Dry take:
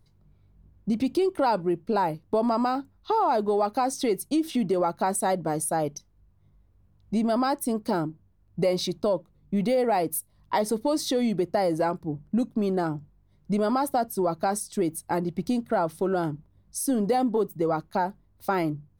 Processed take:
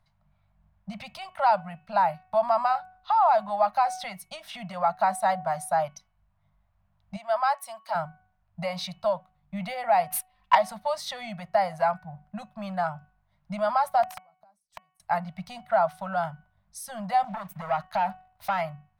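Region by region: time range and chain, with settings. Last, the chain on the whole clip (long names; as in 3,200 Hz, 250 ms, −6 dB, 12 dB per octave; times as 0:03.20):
0:07.16–0:07.95: high-pass filter 610 Hz + multiband upward and downward expander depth 40%
0:10.10–0:10.55: parametric band 2,600 Hz +11.5 dB 0.8 octaves + comb filter 3.9 ms, depth 88% + leveller curve on the samples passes 2
0:14.03–0:15.00: parametric band 2,200 Hz −10 dB 1.9 octaves + gate with flip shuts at −24 dBFS, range −35 dB + wrap-around overflow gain 30.5 dB
0:17.24–0:18.61: downward compressor 5 to 1, threshold −28 dBFS + leveller curve on the samples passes 2
whole clip: elliptic band-stop filter 190–640 Hz, stop band 40 dB; bass and treble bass −13 dB, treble −14 dB; hum removal 371.4 Hz, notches 8; level +4.5 dB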